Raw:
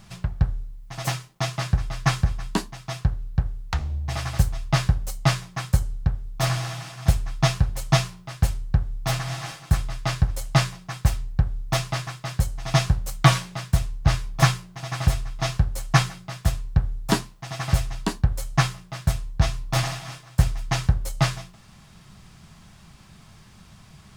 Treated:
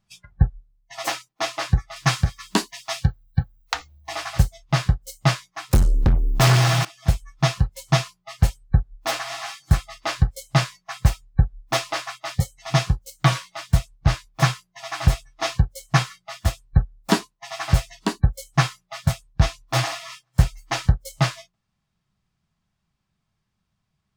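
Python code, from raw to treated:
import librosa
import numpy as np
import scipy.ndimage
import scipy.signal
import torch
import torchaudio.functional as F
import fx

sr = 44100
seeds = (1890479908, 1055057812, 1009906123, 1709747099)

y = fx.high_shelf(x, sr, hz=2500.0, db=6.5, at=(1.96, 4.09))
y = fx.leveller(y, sr, passes=5, at=(5.71, 6.85))
y = fx.noise_reduce_blind(y, sr, reduce_db=28)
y = fx.peak_eq(y, sr, hz=11000.0, db=-4.5, octaves=1.1)
y = fx.rider(y, sr, range_db=4, speed_s=0.5)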